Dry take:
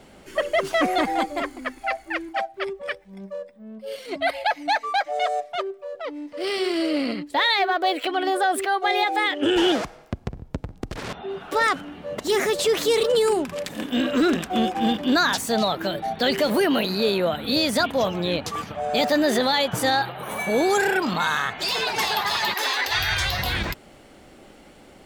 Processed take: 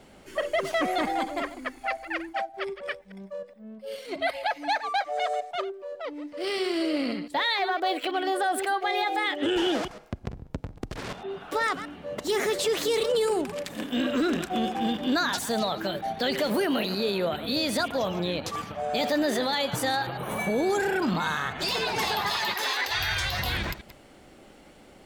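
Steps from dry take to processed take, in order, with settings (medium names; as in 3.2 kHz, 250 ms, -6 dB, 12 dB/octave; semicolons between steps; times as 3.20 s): chunks repeated in reverse 104 ms, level -13.5 dB; 20.07–22.30 s: bass shelf 430 Hz +8 dB; peak limiter -14.5 dBFS, peak gain reduction 7 dB; trim -3.5 dB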